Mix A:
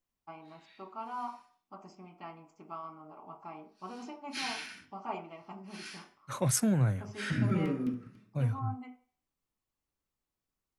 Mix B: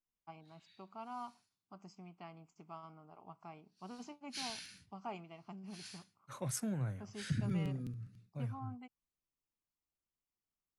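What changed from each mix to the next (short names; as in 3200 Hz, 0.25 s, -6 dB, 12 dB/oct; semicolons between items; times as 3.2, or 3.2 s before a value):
second voice -10.5 dB; reverb: off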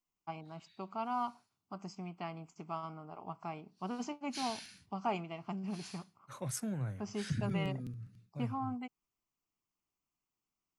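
first voice +9.5 dB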